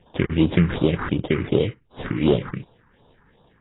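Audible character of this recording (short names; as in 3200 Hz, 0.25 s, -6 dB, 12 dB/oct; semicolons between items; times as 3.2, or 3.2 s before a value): aliases and images of a low sample rate 2600 Hz, jitter 20%; phasing stages 4, 2.7 Hz, lowest notch 570–2000 Hz; AAC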